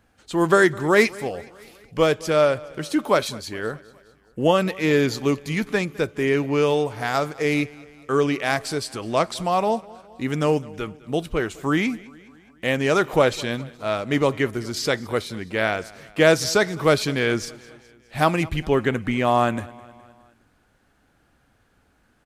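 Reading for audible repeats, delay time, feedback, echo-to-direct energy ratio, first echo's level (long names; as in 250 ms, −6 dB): 3, 208 ms, 57%, −20.5 dB, −22.0 dB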